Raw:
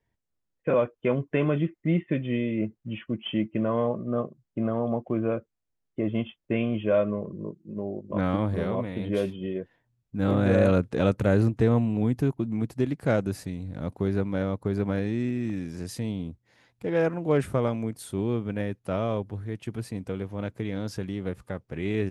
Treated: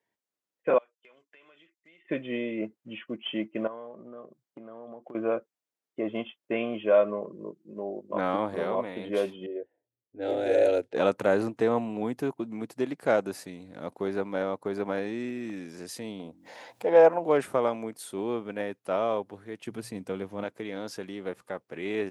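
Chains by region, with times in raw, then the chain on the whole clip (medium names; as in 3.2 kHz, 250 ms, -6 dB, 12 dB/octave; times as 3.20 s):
0.78–2.05 s: low-pass 7.6 kHz + differentiator + compression 8:1, threshold -52 dBFS
3.67–5.15 s: band-stop 2.6 kHz, Q 16 + compression 20:1, threshold -35 dBFS
9.46–10.95 s: level-controlled noise filter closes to 490 Hz, open at -17.5 dBFS + static phaser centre 460 Hz, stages 4
16.20–17.25 s: high-order bell 690 Hz +8 dB 1.2 oct + de-hum 45.24 Hz, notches 7 + upward compressor, threshold -32 dBFS
19.65–20.44 s: tone controls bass +8 dB, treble +2 dB + hum notches 60/120 Hz
whole clip: high-pass 330 Hz 12 dB/octave; dynamic bell 840 Hz, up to +5 dB, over -41 dBFS, Q 1.3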